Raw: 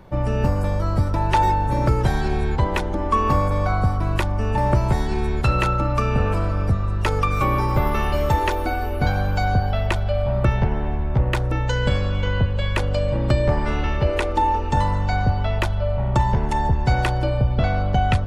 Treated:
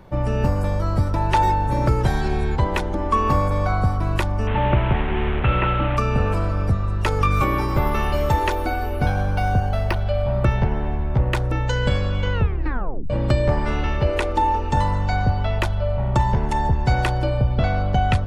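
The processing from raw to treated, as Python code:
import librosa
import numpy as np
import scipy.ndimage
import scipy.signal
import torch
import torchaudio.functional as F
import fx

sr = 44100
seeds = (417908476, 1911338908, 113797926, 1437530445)

y = fx.delta_mod(x, sr, bps=16000, step_db=-21.0, at=(4.47, 5.97))
y = fx.doubler(y, sr, ms=21.0, db=-5.5, at=(7.18, 7.79))
y = fx.resample_linear(y, sr, factor=6, at=(9.02, 9.99))
y = fx.edit(y, sr, fx.tape_stop(start_s=12.33, length_s=0.77), tone=tone)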